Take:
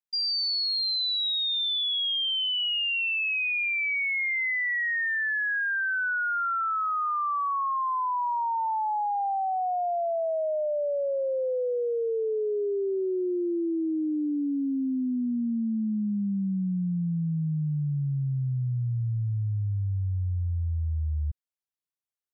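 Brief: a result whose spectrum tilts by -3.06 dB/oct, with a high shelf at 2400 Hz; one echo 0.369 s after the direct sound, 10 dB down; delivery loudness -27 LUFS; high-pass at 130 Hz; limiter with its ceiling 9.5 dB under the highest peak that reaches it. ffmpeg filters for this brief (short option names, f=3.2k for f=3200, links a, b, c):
-af "highpass=130,highshelf=f=2.4k:g=-8.5,alimiter=level_in=10dB:limit=-24dB:level=0:latency=1,volume=-10dB,aecho=1:1:369:0.316,volume=9dB"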